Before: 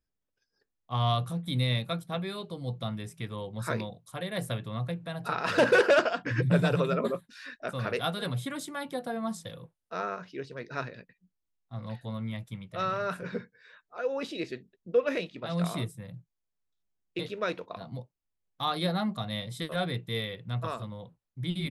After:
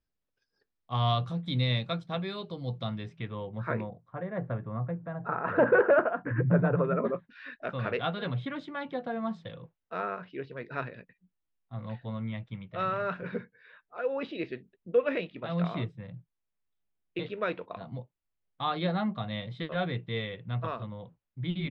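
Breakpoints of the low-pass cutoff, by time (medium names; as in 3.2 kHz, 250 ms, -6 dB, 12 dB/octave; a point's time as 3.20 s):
low-pass 24 dB/octave
2.89 s 5.3 kHz
3.23 s 3.3 kHz
4.17 s 1.6 kHz
6.80 s 1.6 kHz
7.48 s 3.3 kHz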